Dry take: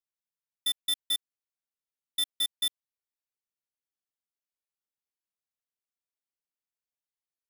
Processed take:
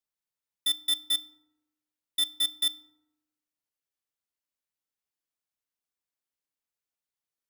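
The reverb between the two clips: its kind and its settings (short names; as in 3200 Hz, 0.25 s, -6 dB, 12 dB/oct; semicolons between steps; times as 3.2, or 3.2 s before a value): FDN reverb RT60 0.97 s, low-frequency decay 1.1×, high-frequency decay 0.45×, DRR 12.5 dB; gain +1 dB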